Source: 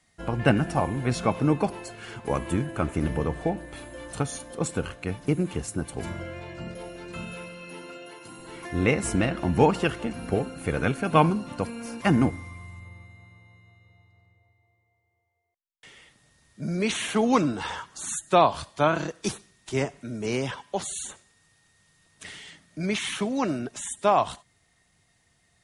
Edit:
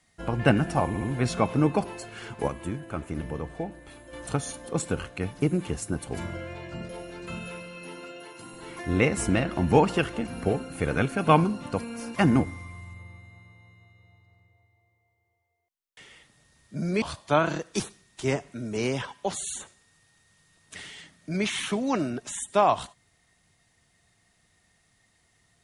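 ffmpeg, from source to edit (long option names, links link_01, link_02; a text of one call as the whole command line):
ffmpeg -i in.wav -filter_complex "[0:a]asplit=6[link_01][link_02][link_03][link_04][link_05][link_06];[link_01]atrim=end=0.942[link_07];[link_02]atrim=start=0.868:end=0.942[link_08];[link_03]atrim=start=0.868:end=2.342[link_09];[link_04]atrim=start=2.338:end=3.992,asetpts=PTS-STARTPTS,volume=-6.5dB[link_10];[link_05]atrim=start=3.988:end=16.882[link_11];[link_06]atrim=start=18.508[link_12];[link_07][link_08]acrossfade=duration=0.004:curve1=hsin:curve2=hsin[link_13];[link_13][link_09]acrossfade=duration=0.004:curve1=hsin:curve2=hsin[link_14];[link_14][link_10]acrossfade=duration=0.004:curve1=hsin:curve2=hsin[link_15];[link_15][link_11]acrossfade=duration=0.004:curve1=hsin:curve2=hsin[link_16];[link_16][link_12]acrossfade=duration=0.004:curve1=hsin:curve2=hsin" out.wav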